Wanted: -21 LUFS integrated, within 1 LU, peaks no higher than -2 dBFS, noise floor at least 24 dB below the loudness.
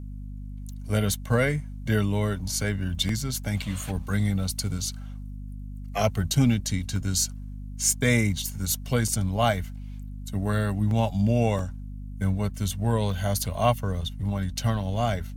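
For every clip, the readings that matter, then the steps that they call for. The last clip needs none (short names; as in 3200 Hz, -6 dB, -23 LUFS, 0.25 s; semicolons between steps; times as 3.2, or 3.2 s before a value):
dropouts 7; longest dropout 2.0 ms; hum 50 Hz; harmonics up to 250 Hz; hum level -35 dBFS; loudness -26.5 LUFS; peak -9.0 dBFS; loudness target -21.0 LUFS
-> interpolate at 3.09/6.34/6.96/9.08/10.91/11.59/13.12, 2 ms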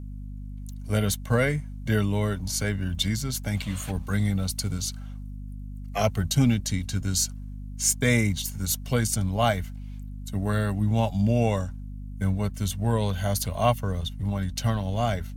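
dropouts 0; hum 50 Hz; harmonics up to 250 Hz; hum level -35 dBFS
-> notches 50/100/150/200/250 Hz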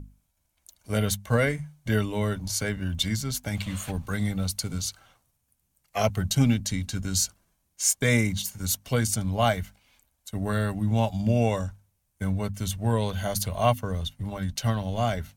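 hum none; loudness -27.0 LUFS; peak -9.0 dBFS; loudness target -21.0 LUFS
-> gain +6 dB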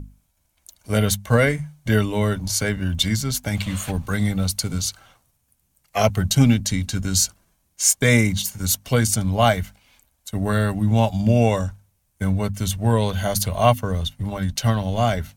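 loudness -21.0 LUFS; peak -3.0 dBFS; noise floor -68 dBFS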